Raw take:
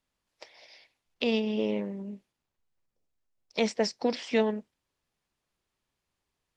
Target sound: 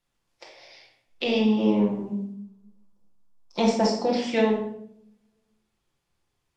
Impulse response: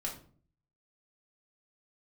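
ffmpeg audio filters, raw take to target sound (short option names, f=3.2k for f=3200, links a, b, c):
-filter_complex "[0:a]asettb=1/sr,asplit=3[a][b][c];[a]atrim=end=1.404[d];[b]atrim=start=1.4:end=4.04,asetpts=PTS-STARTPTS,afade=t=in:d=0.004:c=qsin,afade=t=out:st=2.636:d=0.004:c=qsin,equalizer=f=250:t=o:w=1:g=6,equalizer=f=500:t=o:w=1:g=-4,equalizer=f=1k:t=o:w=1:g=10,equalizer=f=2k:t=o:w=1:g=-8[e];[c]atrim=start=4.036[f];[d][e]acrossfade=d=0.004:c1=hsin:c2=qsin[g];[g][f]acrossfade=d=0.004:c1=qsin:c2=hsin[h];[1:a]atrim=start_sample=2205,asetrate=26019,aresample=44100[i];[h][i]afir=irnorm=-1:irlink=0"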